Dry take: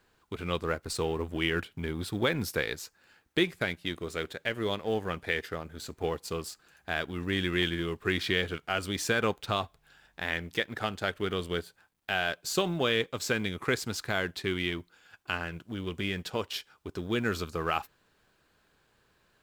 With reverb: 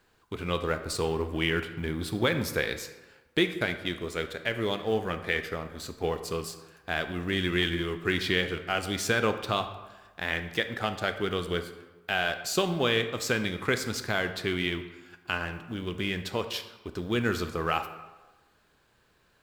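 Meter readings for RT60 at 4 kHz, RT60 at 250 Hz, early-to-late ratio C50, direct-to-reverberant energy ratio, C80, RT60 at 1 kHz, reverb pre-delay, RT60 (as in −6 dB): 0.75 s, 1.1 s, 10.5 dB, 8.5 dB, 12.5 dB, 1.2 s, 18 ms, 1.2 s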